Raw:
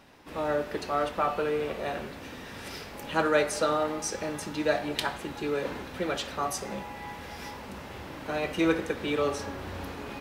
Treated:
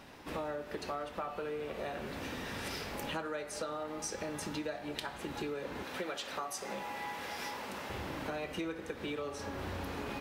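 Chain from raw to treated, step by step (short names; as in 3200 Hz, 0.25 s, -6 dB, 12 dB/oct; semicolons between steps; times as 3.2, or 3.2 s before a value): 5.83–7.9 HPF 440 Hz 6 dB/oct; compressor 12:1, threshold -38 dBFS, peak gain reduction 20 dB; gain +2.5 dB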